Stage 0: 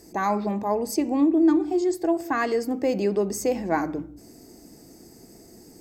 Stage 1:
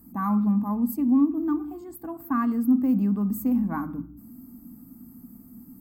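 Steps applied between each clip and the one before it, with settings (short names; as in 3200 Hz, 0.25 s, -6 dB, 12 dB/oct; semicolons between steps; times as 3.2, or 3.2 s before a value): EQ curve 150 Hz 0 dB, 250 Hz +11 dB, 360 Hz -19 dB, 640 Hz -17 dB, 1200 Hz +1 dB, 1900 Hz -17 dB, 2800 Hz -17 dB, 5900 Hz -27 dB, 14000 Hz +9 dB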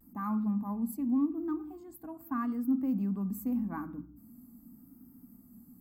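vibrato 0.84 Hz 58 cents; gain -8.5 dB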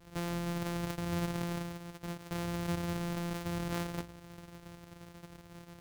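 sample sorter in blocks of 256 samples; in parallel at +1 dB: negative-ratio compressor -37 dBFS, ratio -0.5; on the sum: gain -7 dB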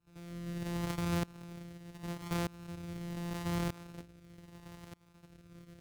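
rotary speaker horn 0.75 Hz; tremolo saw up 0.81 Hz, depth 95%; pre-echo 88 ms -13 dB; gain +3.5 dB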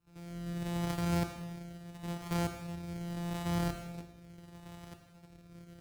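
reverb, pre-delay 13 ms, DRR 5.5 dB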